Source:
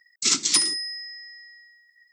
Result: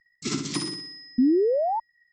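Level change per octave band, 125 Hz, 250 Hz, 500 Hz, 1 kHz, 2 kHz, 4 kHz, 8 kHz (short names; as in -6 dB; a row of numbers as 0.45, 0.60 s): n/a, +17.0 dB, +22.5 dB, +13.0 dB, -7.5 dB, -10.5 dB, -14.0 dB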